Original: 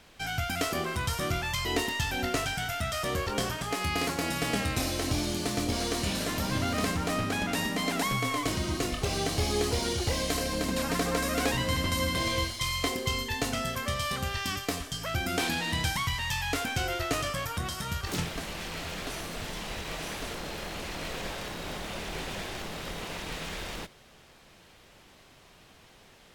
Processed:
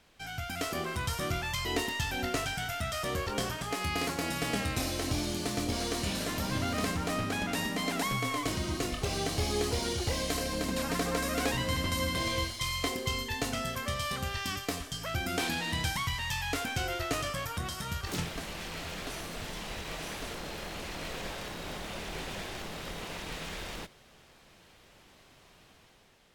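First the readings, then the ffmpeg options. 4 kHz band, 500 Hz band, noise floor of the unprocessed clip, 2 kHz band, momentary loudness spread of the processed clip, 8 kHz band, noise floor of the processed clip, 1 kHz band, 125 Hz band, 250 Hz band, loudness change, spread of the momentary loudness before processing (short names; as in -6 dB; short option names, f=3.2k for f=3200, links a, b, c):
-2.5 dB, -2.5 dB, -56 dBFS, -2.5 dB, 8 LU, -2.5 dB, -59 dBFS, -2.5 dB, -2.5 dB, -2.5 dB, -2.5 dB, 8 LU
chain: -af "dynaudnorm=f=110:g=11:m=5dB,volume=-7.5dB"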